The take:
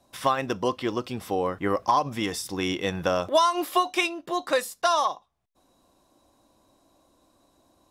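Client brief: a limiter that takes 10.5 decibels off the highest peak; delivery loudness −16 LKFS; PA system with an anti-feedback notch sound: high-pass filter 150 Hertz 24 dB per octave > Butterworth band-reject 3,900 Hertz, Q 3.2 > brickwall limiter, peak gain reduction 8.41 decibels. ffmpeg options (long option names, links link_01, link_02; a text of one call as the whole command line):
ffmpeg -i in.wav -af "alimiter=limit=-20.5dB:level=0:latency=1,highpass=frequency=150:width=0.5412,highpass=frequency=150:width=1.3066,asuperstop=centerf=3900:order=8:qfactor=3.2,volume=20dB,alimiter=limit=-6.5dB:level=0:latency=1" out.wav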